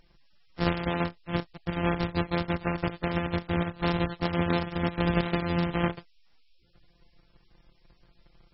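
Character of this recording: a buzz of ramps at a fixed pitch in blocks of 256 samples; tremolo saw down 6 Hz, depth 45%; a quantiser's noise floor 12-bit, dither triangular; MP3

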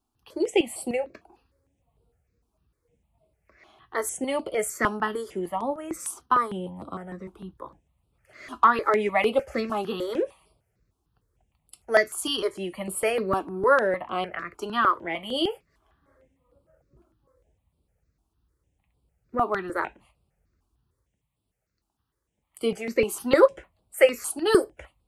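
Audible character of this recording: notches that jump at a steady rate 6.6 Hz 520–6300 Hz

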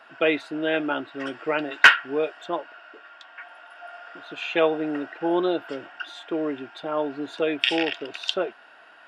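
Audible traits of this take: noise floor -51 dBFS; spectral tilt -0.5 dB/oct

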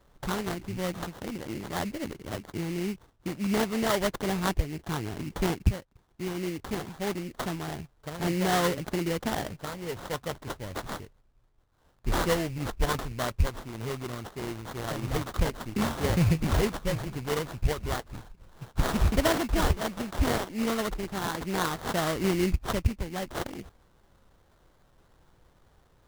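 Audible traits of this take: aliases and images of a low sample rate 2500 Hz, jitter 20%

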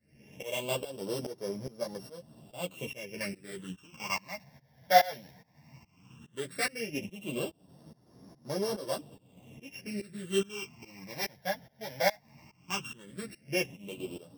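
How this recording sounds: a buzz of ramps at a fixed pitch in blocks of 16 samples; phasing stages 8, 0.15 Hz, lowest notch 350–2600 Hz; tremolo saw up 2.4 Hz, depth 95%; a shimmering, thickened sound

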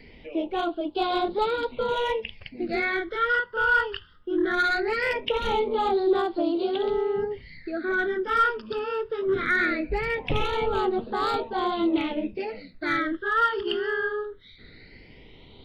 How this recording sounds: phasing stages 12, 0.2 Hz, lowest notch 700–2000 Hz

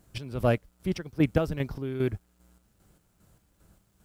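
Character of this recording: chopped level 2.5 Hz, depth 60%, duty 45%; a quantiser's noise floor 12-bit, dither none

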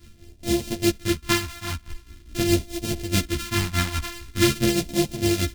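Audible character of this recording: a buzz of ramps at a fixed pitch in blocks of 128 samples; phasing stages 2, 0.45 Hz, lowest notch 460–1200 Hz; tremolo triangle 4.8 Hz, depth 75%; a shimmering, thickened sound

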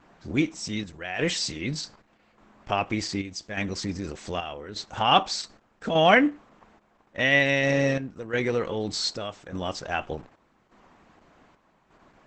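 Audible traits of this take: chopped level 0.84 Hz, depth 60%, duty 70%; Opus

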